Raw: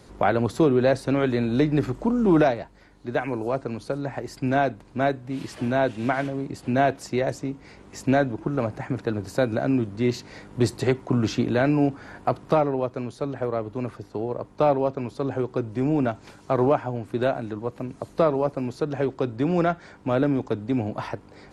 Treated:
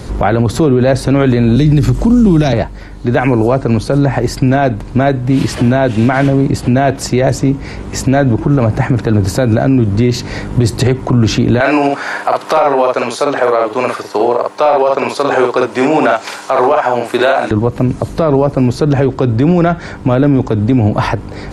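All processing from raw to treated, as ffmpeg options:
ffmpeg -i in.wav -filter_complex "[0:a]asettb=1/sr,asplit=3[link_01][link_02][link_03];[link_01]atrim=end=1.564[link_04];[link_02]atrim=start=1.56:end=2.53,asetpts=PTS-STARTPTS,afade=type=in:duration=0.004:curve=qsin,afade=type=out:start_time=0.966:duration=0.004:curve=qsin,highshelf=frequency=3800:gain=6,acrossover=split=260|3000[link_05][link_06][link_07];[link_06]acompressor=threshold=-40dB:ratio=2:attack=3.2:release=140:knee=2.83:detection=peak[link_08];[link_05][link_08][link_07]amix=inputs=3:normalize=0[link_09];[link_03]atrim=start=2.526[link_10];[link_04][link_09]acrossfade=duration=0.004:curve1=hsin:curve2=qsin[link_11];[link_11][link_10]acrossfade=duration=0.004:curve1=qsin:curve2=hsin,asettb=1/sr,asplit=3[link_12][link_13][link_14];[link_12]atrim=end=11.604[link_15];[link_13]atrim=start=11.6:end=17.51,asetpts=PTS-STARTPTS,afade=type=in:duration=0.004:curve=qsin,afade=type=out:start_time=5.906:duration=0.004:curve=qsin,highpass=700,acontrast=32,asplit=2[link_16][link_17];[link_17]adelay=50,volume=-4dB[link_18];[link_16][link_18]amix=inputs=2:normalize=0,atrim=end_sample=260631[link_19];[link_14]atrim=start=17.506[link_20];[link_15][link_19]acrossfade=duration=0.004:curve1=hsin:curve2=qsin[link_21];[link_21][link_20]acrossfade=duration=0.004:curve1=qsin:curve2=hsin,lowshelf=frequency=140:gain=11,acompressor=threshold=-21dB:ratio=3,alimiter=level_in=19.5dB:limit=-1dB:release=50:level=0:latency=1,volume=-1dB" out.wav

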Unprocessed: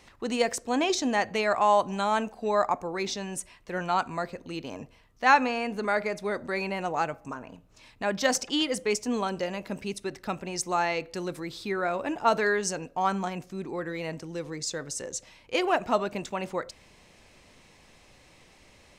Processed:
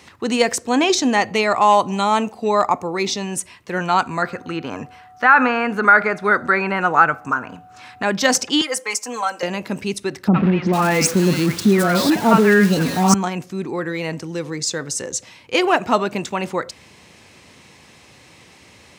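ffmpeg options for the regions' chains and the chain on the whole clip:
ffmpeg -i in.wav -filter_complex "[0:a]asettb=1/sr,asplit=3[link_01][link_02][link_03];[link_01]atrim=end=1.174[link_04];[link_02]atrim=start=1.17:end=3.31,asetpts=PTS-STARTPTS,afade=type=in:duration=0.004:curve=qsin,afade=type=out:start_time=2.136:duration=0.004:curve=qsin,bandreject=frequency=1600:width=5.7,asoftclip=type=hard:threshold=-13.5dB[link_05];[link_03]atrim=start=3.306[link_06];[link_04][link_05]acrossfade=duration=0.004:curve1=hsin:curve2=qsin[link_07];[link_07][link_06]acrossfade=duration=0.004:curve1=qsin:curve2=hsin,asettb=1/sr,asplit=3[link_08][link_09][link_10];[link_08]atrim=end=4.224[link_11];[link_09]atrim=start=4.22:end=8.03,asetpts=PTS-STARTPTS,afade=type=in:duration=0.004:curve=qsin,afade=type=out:start_time=3.806:duration=0.004:curve=qsin,acrossover=split=2900[link_12][link_13];[link_13]acompressor=threshold=-54dB:ratio=4:attack=1:release=60[link_14];[link_12][link_14]amix=inputs=2:normalize=0,equalizer=frequency=1400:width=2.4:gain=14.5,aeval=exprs='val(0)+0.00282*sin(2*PI*740*n/s)':channel_layout=same[link_15];[link_10]atrim=start=8.026[link_16];[link_11][link_15]acrossfade=duration=0.004:curve1=hsin:curve2=qsin[link_17];[link_17][link_16]acrossfade=duration=0.004:curve1=qsin:curve2=hsin,asettb=1/sr,asplit=3[link_18][link_19][link_20];[link_18]atrim=end=8.614[link_21];[link_19]atrim=start=8.61:end=9.43,asetpts=PTS-STARTPTS,afade=type=in:duration=0.004:curve=qsin,afade=type=out:start_time=0.816:duration=0.004:curve=qsin,highpass=780,equalizer=frequency=3500:width_type=o:width=0.97:gain=-10,aecho=1:1:3.8:0.94,atrim=end_sample=36162[link_22];[link_20]atrim=start=9.426[link_23];[link_21][link_22]acrossfade=duration=0.004:curve1=hsin:curve2=qsin[link_24];[link_24][link_23]acrossfade=duration=0.004:curve1=qsin:curve2=hsin,asettb=1/sr,asplit=3[link_25][link_26][link_27];[link_25]atrim=end=10.284[link_28];[link_26]atrim=start=10.28:end=13.14,asetpts=PTS-STARTPTS,afade=type=in:duration=0.004:curve=qsin,afade=type=out:start_time=2.856:duration=0.004:curve=qsin,aeval=exprs='val(0)+0.5*0.0316*sgn(val(0))':channel_layout=same,equalizer=frequency=200:width_type=o:width=0.76:gain=10.5,acrossover=split=850|2800[link_29][link_30][link_31];[link_30]adelay=60[link_32];[link_31]adelay=450[link_33];[link_29][link_32][link_33]amix=inputs=3:normalize=0,atrim=end_sample=126126[link_34];[link_27]atrim=start=13.136[link_35];[link_28][link_34]acrossfade=duration=0.004:curve1=hsin:curve2=qsin[link_36];[link_36][link_35]acrossfade=duration=0.004:curve1=qsin:curve2=hsin,highpass=frequency=76:width=0.5412,highpass=frequency=76:width=1.3066,equalizer=frequency=610:width_type=o:width=0.54:gain=-4.5,alimiter=level_in=11dB:limit=-1dB:release=50:level=0:latency=1,volume=-1dB" out.wav

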